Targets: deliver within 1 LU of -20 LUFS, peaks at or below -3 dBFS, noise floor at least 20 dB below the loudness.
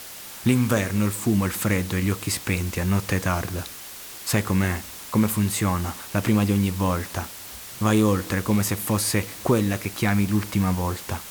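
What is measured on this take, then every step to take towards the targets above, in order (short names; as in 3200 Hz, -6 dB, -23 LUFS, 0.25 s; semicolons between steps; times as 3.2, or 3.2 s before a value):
noise floor -39 dBFS; noise floor target -44 dBFS; loudness -24.0 LUFS; peak -8.0 dBFS; loudness target -20.0 LUFS
-> denoiser 6 dB, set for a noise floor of -39 dBFS; gain +4 dB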